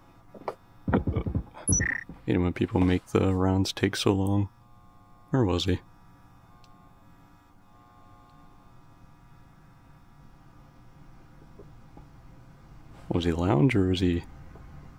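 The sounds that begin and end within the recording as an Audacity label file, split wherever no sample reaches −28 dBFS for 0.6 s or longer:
5.330000	5.760000	sound
13.110000	14.190000	sound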